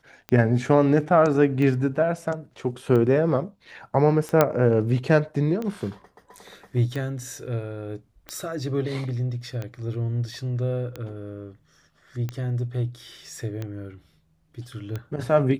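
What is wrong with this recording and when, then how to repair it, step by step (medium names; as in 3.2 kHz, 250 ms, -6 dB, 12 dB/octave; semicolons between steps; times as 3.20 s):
tick 45 rpm -18 dBFS
4.41 s: pop -4 dBFS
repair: de-click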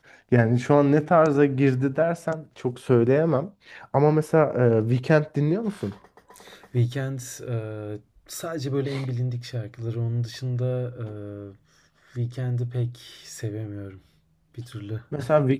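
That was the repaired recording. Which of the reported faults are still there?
nothing left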